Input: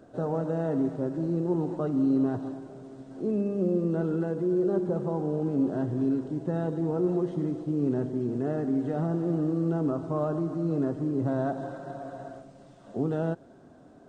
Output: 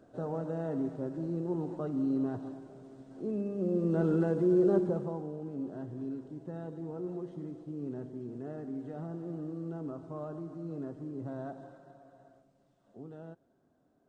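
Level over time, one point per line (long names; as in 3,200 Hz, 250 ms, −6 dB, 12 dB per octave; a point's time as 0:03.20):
0:03.57 −6.5 dB
0:04.07 +0.5 dB
0:04.75 +0.5 dB
0:05.35 −12 dB
0:11.50 −12 dB
0:12.04 −18.5 dB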